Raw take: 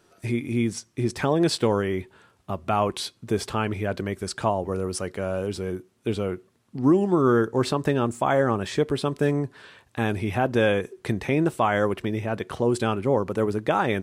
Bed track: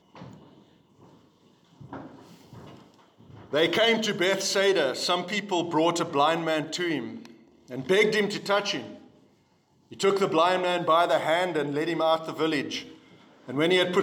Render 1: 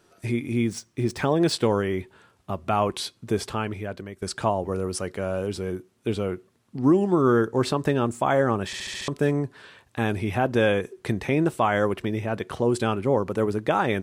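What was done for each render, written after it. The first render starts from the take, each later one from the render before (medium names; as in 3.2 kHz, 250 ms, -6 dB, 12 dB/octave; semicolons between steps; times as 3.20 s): 0.57–1.53 s: median filter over 3 samples; 3.33–4.22 s: fade out, to -12.5 dB; 8.66 s: stutter in place 0.07 s, 6 plays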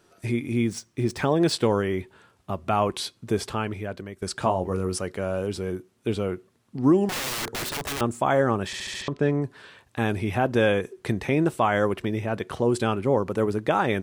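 4.39–4.98 s: doubling 22 ms -7.5 dB; 7.09–8.01 s: integer overflow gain 25 dB; 9.02–9.42 s: distance through air 130 m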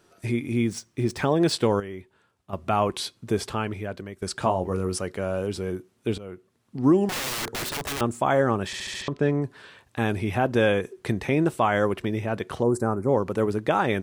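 1.80–2.53 s: gain -10 dB; 6.18–6.81 s: fade in, from -16 dB; 12.63–13.09 s: Butterworth band-stop 3.1 kHz, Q 0.59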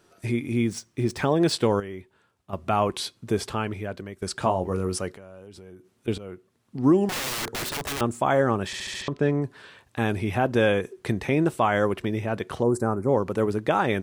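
5.12–6.08 s: compression 4:1, threshold -44 dBFS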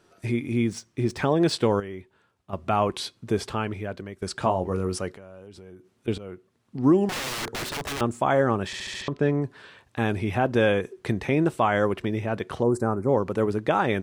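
treble shelf 9.2 kHz -8 dB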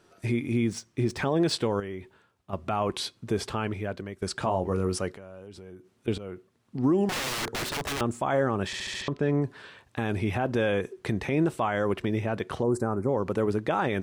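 peak limiter -16 dBFS, peak gain reduction 6 dB; reverse; upward compressor, threshold -42 dBFS; reverse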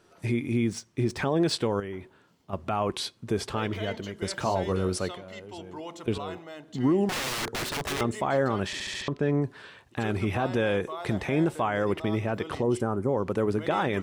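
add bed track -16.5 dB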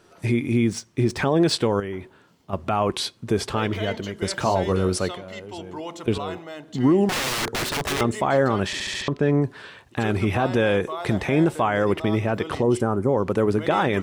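trim +5.5 dB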